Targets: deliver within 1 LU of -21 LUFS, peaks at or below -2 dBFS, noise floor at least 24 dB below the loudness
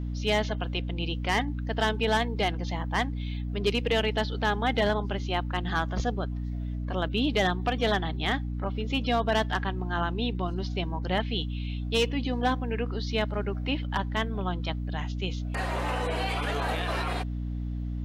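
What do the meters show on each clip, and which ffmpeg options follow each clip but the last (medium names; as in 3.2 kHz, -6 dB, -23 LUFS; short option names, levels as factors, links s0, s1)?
hum 60 Hz; highest harmonic 300 Hz; hum level -29 dBFS; loudness -29.0 LUFS; peak level -13.5 dBFS; loudness target -21.0 LUFS
-> -af "bandreject=f=60:t=h:w=4,bandreject=f=120:t=h:w=4,bandreject=f=180:t=h:w=4,bandreject=f=240:t=h:w=4,bandreject=f=300:t=h:w=4"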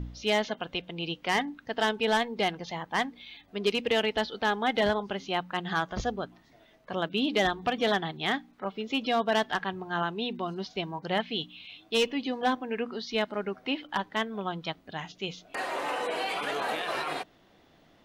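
hum not found; loudness -30.5 LUFS; peak level -15.5 dBFS; loudness target -21.0 LUFS
-> -af "volume=2.99"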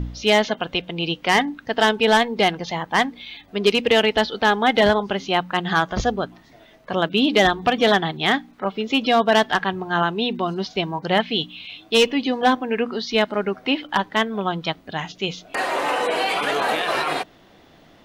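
loudness -21.0 LUFS; peak level -6.0 dBFS; noise floor -51 dBFS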